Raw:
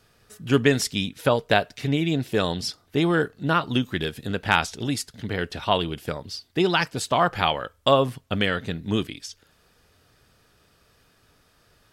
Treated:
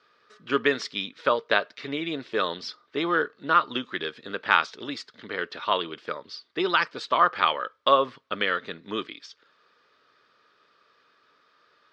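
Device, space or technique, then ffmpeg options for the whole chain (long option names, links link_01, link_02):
phone earpiece: -af "highpass=430,equalizer=frequency=750:width_type=q:width=4:gain=-10,equalizer=frequency=1200:width_type=q:width=4:gain=7,equalizer=frequency=2800:width_type=q:width=4:gain=-4,lowpass=frequency=4400:width=0.5412,lowpass=frequency=4400:width=1.3066"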